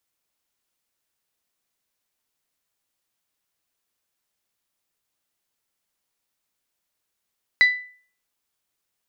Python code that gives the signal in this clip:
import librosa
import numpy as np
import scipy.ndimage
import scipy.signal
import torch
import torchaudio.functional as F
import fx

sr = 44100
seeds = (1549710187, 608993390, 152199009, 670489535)

y = fx.strike_glass(sr, length_s=0.89, level_db=-9.0, body='bell', hz=1990.0, decay_s=0.46, tilt_db=12, modes=5)